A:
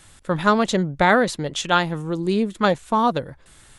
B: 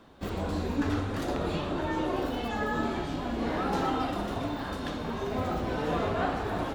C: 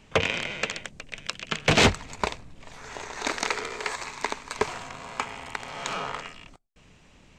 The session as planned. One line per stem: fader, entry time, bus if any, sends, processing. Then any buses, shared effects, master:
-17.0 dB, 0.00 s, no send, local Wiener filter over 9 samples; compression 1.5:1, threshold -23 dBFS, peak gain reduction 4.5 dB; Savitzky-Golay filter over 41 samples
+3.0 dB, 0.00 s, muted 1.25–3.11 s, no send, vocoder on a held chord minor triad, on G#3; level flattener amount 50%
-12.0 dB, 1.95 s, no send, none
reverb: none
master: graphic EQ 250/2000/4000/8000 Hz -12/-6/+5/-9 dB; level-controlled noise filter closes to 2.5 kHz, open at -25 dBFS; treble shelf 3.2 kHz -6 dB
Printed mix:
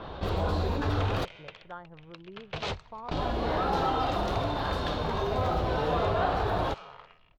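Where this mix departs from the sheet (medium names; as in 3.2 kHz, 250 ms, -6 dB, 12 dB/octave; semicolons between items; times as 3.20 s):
stem B: missing vocoder on a held chord minor triad, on G#3; stem C: entry 1.95 s -> 0.85 s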